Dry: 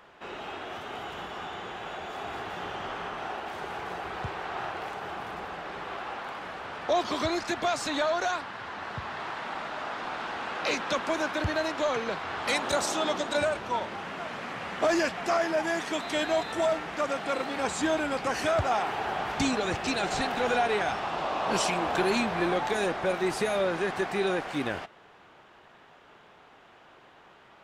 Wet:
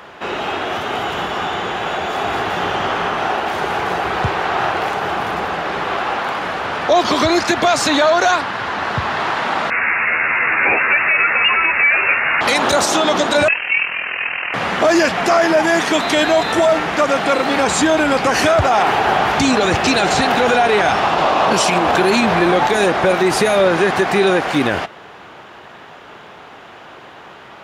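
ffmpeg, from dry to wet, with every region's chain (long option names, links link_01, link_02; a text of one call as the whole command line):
ffmpeg -i in.wav -filter_complex "[0:a]asettb=1/sr,asplit=3[link_01][link_02][link_03];[link_01]atrim=end=9.704[link_04];[link_02]atrim=start=9.7:end=12.41,asetpts=PTS-STARTPTS,afade=type=in:duration=0.004:curve=qsin,afade=type=out:start_time=2.706:duration=0.004:curve=qsin,asplit=2[link_05][link_06];[link_06]adelay=12,volume=-2.5dB[link_07];[link_05][link_07]amix=inputs=2:normalize=0,atrim=end_sample=119511,lowpass=frequency=2500:width_type=q:width=0.5098,lowpass=frequency=2500:width_type=q:width=0.6013,lowpass=frequency=2500:width_type=q:width=0.9,lowpass=frequency=2500:width_type=q:width=2.563,afreqshift=-2900[link_08];[link_03]atrim=start=12.406[link_09];[link_04][link_08]acrossfade=duration=0.004:curve1=hsin:curve2=qsin[link_10];[link_10][link_09]acrossfade=duration=0.004:curve1=qsin:curve2=hsin,asettb=1/sr,asplit=3[link_11][link_12][link_13];[link_11]atrim=end=13.484[link_14];[link_12]atrim=start=13.48:end=14.54,asetpts=PTS-STARTPTS,afade=type=in:duration=0.004:curve=qsin,afade=type=out:start_time=1.056:duration=0.004:curve=qsin,lowshelf=frequency=350:width_type=q:width=3:gain=-6,tremolo=f=41:d=0.667,lowpass=frequency=2700:width_type=q:width=0.5098,lowpass=frequency=2700:width_type=q:width=0.6013,lowpass=frequency=2700:width_type=q:width=0.9,lowpass=frequency=2700:width_type=q:width=2.563,afreqshift=-3200[link_15];[link_13]atrim=start=14.536[link_16];[link_14][link_15]acrossfade=duration=0.004:curve1=hsin:curve2=qsin[link_17];[link_17][link_16]acrossfade=duration=0.004:curve1=qsin:curve2=hsin,highpass=55,bandreject=frequency=8000:width=16,alimiter=level_in=21dB:limit=-1dB:release=50:level=0:latency=1,volume=-4.5dB" out.wav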